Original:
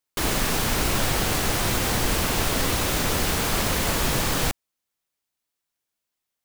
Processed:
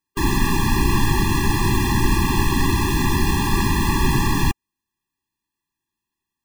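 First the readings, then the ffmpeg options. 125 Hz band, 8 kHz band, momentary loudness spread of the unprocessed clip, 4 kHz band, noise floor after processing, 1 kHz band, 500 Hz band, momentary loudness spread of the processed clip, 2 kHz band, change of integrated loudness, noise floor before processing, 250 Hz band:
+8.0 dB, -3.0 dB, 1 LU, -1.5 dB, -85 dBFS, +4.5 dB, 0.0 dB, 2 LU, +2.0 dB, +3.0 dB, -84 dBFS, +8.0 dB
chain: -af "highshelf=f=2.9k:g=-9,afftfilt=real='re*eq(mod(floor(b*sr/1024/400),2),0)':imag='im*eq(mod(floor(b*sr/1024/400),2),0)':win_size=1024:overlap=0.75,volume=8dB"

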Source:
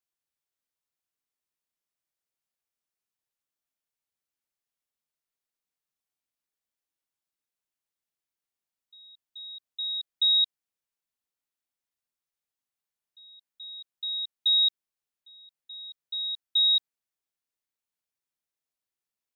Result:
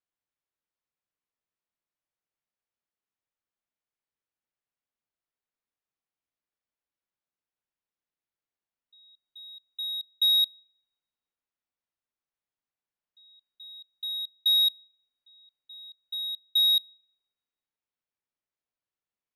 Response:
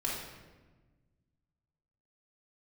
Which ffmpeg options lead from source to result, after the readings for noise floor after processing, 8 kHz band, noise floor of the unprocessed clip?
under -85 dBFS, n/a, under -85 dBFS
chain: -filter_complex "[0:a]adynamicsmooth=sensitivity=5:basefreq=3.6k,asplit=2[a][b];[1:a]atrim=start_sample=2205,asetrate=61740,aresample=44100[c];[b][c]afir=irnorm=-1:irlink=0,volume=-28dB[d];[a][d]amix=inputs=2:normalize=0"

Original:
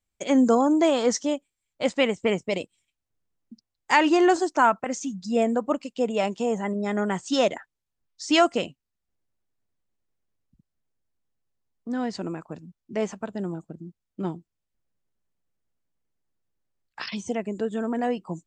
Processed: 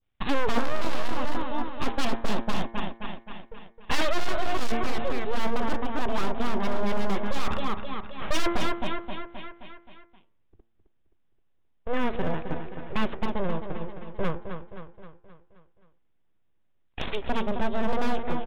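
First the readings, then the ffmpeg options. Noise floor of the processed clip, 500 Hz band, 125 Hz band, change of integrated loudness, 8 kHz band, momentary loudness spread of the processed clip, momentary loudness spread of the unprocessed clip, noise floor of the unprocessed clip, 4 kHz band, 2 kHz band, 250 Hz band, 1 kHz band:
-66 dBFS, -6.5 dB, +2.5 dB, -6.5 dB, -8.0 dB, 14 LU, 18 LU, -84 dBFS, -2.5 dB, -3.0 dB, -6.5 dB, -3.5 dB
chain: -af "aeval=exprs='abs(val(0))':c=same,bandreject=f=114.4:t=h:w=4,bandreject=f=228.8:t=h:w=4,bandreject=f=343.2:t=h:w=4,bandreject=f=457.6:t=h:w=4,bandreject=f=572:t=h:w=4,bandreject=f=686.4:t=h:w=4,bandreject=f=800.8:t=h:w=4,bandreject=f=915.2:t=h:w=4,bandreject=f=1.0296k:t=h:w=4,bandreject=f=1.144k:t=h:w=4,bandreject=f=1.2584k:t=h:w=4,bandreject=f=1.3728k:t=h:w=4,bandreject=f=1.4872k:t=h:w=4,bandreject=f=1.6016k:t=h:w=4,bandreject=f=1.716k:t=h:w=4,bandreject=f=1.8304k:t=h:w=4,bandreject=f=1.9448k:t=h:w=4,bandreject=f=2.0592k:t=h:w=4,bandreject=f=2.1736k:t=h:w=4,bandreject=f=2.288k:t=h:w=4,bandreject=f=2.4024k:t=h:w=4,aresample=8000,aresample=44100,aecho=1:1:263|526|789|1052|1315|1578:0.355|0.188|0.0997|0.0528|0.028|0.0148,volume=22dB,asoftclip=hard,volume=-22dB,adynamicequalizer=threshold=0.00316:dfrequency=2200:dqfactor=1.1:tfrequency=2200:tqfactor=1.1:attack=5:release=100:ratio=0.375:range=3:mode=cutabove:tftype=bell,volume=6.5dB"

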